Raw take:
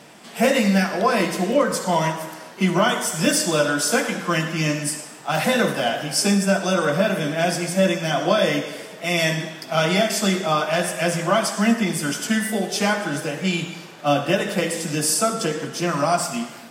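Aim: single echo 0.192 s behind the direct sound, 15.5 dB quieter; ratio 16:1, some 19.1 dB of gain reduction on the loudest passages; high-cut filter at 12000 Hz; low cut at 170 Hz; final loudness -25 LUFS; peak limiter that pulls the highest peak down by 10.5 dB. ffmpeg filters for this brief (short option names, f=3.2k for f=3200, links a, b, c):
-af "highpass=170,lowpass=12k,acompressor=threshold=-33dB:ratio=16,alimiter=level_in=8dB:limit=-24dB:level=0:latency=1,volume=-8dB,aecho=1:1:192:0.168,volume=15dB"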